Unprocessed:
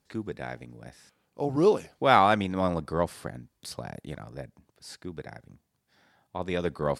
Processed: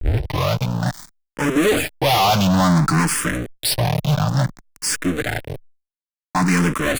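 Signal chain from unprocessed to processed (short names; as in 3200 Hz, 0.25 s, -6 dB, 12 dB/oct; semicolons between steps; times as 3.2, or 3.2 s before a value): tape start at the beginning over 0.59 s; bell 430 Hz -12.5 dB 0.81 oct; comb 6.7 ms, depth 53%; fuzz box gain 43 dB, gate -48 dBFS; power-law curve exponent 0.5; endless phaser +0.57 Hz; gain -1.5 dB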